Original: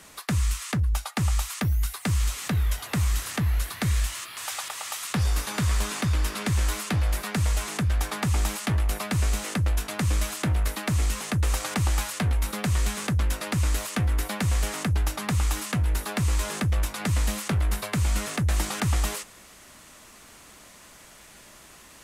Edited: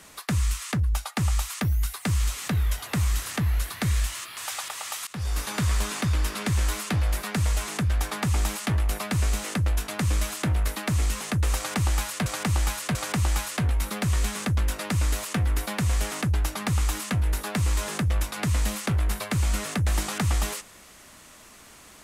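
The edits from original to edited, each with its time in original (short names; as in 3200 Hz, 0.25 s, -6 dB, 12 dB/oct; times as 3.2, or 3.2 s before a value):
5.07–5.45 fade in, from -17 dB
11.57–12.26 loop, 3 plays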